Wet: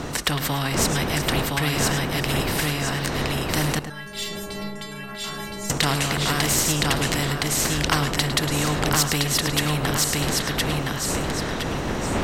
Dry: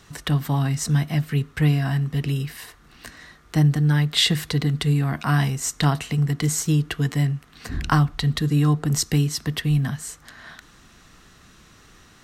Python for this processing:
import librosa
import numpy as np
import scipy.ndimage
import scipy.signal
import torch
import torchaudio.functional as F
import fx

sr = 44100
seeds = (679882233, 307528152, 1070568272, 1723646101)

p1 = fx.dmg_wind(x, sr, seeds[0], corner_hz=280.0, level_db=-28.0)
p2 = fx.high_shelf(p1, sr, hz=9400.0, db=-4.0)
p3 = fx.echo_feedback(p2, sr, ms=1016, feedback_pct=23, wet_db=-3.5)
p4 = np.clip(p3, -10.0 ** (-20.5 / 20.0), 10.0 ** (-20.5 / 20.0))
p5 = p3 + F.gain(torch.from_numpy(p4), -9.0).numpy()
p6 = fx.stiff_resonator(p5, sr, f0_hz=200.0, decay_s=0.69, stiffness=0.008, at=(3.79, 5.7))
p7 = p6 + 10.0 ** (-16.0 / 20.0) * np.pad(p6, (int(106 * sr / 1000.0), 0))[:len(p6)]
y = fx.spectral_comp(p7, sr, ratio=2.0)